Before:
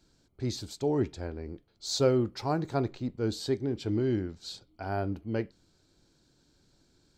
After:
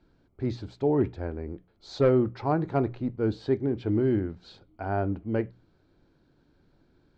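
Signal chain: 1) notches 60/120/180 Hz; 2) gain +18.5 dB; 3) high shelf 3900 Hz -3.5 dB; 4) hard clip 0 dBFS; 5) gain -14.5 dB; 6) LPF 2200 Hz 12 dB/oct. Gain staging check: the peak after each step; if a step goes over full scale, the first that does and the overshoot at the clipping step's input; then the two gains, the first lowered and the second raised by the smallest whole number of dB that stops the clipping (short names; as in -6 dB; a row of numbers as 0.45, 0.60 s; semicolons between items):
-13.0, +5.5, +5.5, 0.0, -14.5, -14.0 dBFS; step 2, 5.5 dB; step 2 +12.5 dB, step 5 -8.5 dB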